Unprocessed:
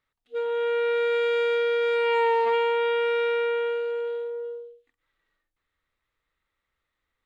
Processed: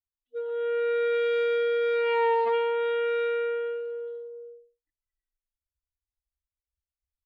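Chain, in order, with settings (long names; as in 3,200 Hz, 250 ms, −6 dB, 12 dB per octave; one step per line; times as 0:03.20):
spectral dynamics exaggerated over time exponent 2
high-frequency loss of the air 110 metres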